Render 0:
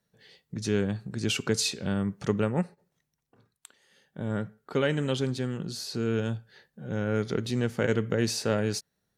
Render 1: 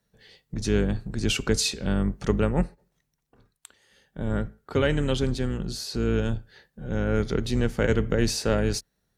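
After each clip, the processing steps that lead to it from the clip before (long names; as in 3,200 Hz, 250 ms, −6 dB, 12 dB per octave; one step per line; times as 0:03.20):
sub-octave generator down 2 octaves, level −2 dB
level +2.5 dB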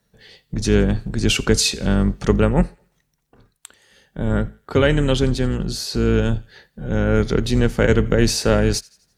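delay with a high-pass on its return 85 ms, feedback 48%, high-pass 2,000 Hz, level −23 dB
level +7 dB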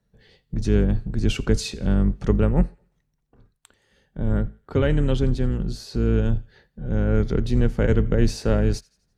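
spectral tilt −2 dB per octave
level −8 dB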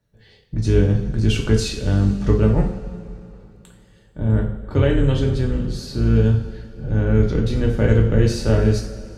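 coupled-rooms reverb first 0.46 s, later 3 s, from −17 dB, DRR −0.5 dB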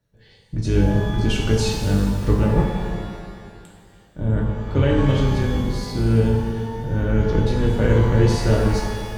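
reverb with rising layers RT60 1.8 s, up +12 semitones, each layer −8 dB, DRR 4.5 dB
level −1.5 dB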